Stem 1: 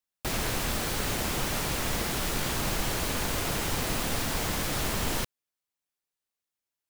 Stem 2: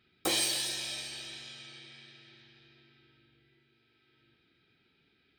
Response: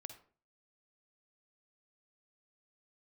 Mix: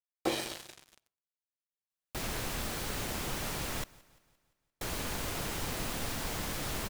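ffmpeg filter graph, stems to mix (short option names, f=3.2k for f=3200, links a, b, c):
-filter_complex "[0:a]adelay=1900,volume=-6.5dB,asplit=3[a][b][c];[a]atrim=end=3.84,asetpts=PTS-STARTPTS,afade=t=out:st=3.836:d=0.004:c=hsin[d];[b]atrim=start=3.84:end=4.81,asetpts=PTS-STARTPTS,volume=0[e];[c]atrim=start=4.81,asetpts=PTS-STARTPTS,afade=t=in:d=0.004:c=hsin[f];[d][e][f]concat=n=3:v=0:a=1,asplit=2[g][h];[h]volume=-23dB[i];[1:a]lowpass=f=1k:p=1,acrusher=bits=5:mix=0:aa=0.5,volume=1dB,asplit=2[j][k];[k]volume=-5.5dB[l];[2:a]atrim=start_sample=2205[m];[l][m]afir=irnorm=-1:irlink=0[n];[i]aecho=0:1:173|346|519|692|865|1038|1211:1|0.5|0.25|0.125|0.0625|0.0312|0.0156[o];[g][j][n][o]amix=inputs=4:normalize=0"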